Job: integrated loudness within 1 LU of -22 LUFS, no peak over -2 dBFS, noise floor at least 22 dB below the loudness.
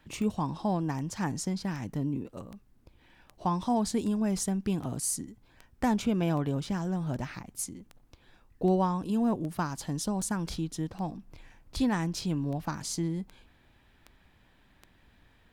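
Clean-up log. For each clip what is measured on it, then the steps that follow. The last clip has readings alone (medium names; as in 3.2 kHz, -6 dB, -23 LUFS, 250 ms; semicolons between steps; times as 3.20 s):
clicks found 20; loudness -31.5 LUFS; peak level -15.0 dBFS; loudness target -22.0 LUFS
-> de-click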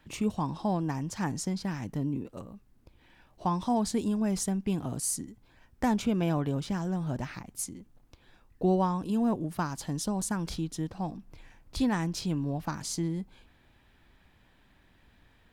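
clicks found 0; loudness -31.5 LUFS; peak level -15.0 dBFS; loudness target -22.0 LUFS
-> trim +9.5 dB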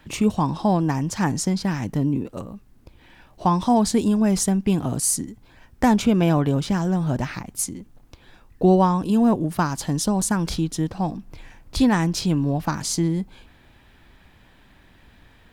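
loudness -22.0 LUFS; peak level -5.5 dBFS; noise floor -54 dBFS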